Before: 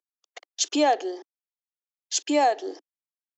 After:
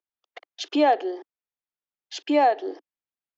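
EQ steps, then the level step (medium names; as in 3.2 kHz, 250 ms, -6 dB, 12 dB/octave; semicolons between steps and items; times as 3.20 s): Bessel low-pass 2.8 kHz, order 4; +2.0 dB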